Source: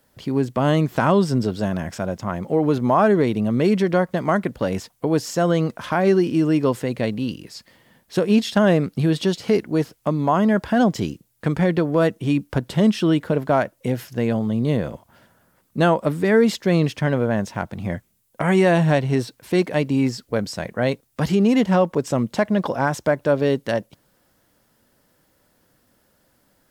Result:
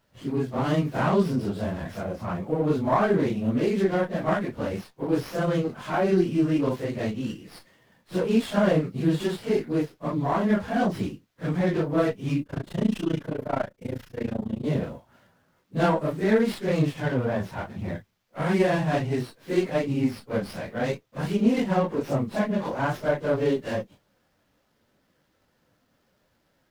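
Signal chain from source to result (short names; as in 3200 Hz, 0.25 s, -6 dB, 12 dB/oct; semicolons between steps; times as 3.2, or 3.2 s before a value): phase scrambler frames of 0.1 s; 12.43–14.65 AM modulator 28 Hz, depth 90%; running maximum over 5 samples; gain -5 dB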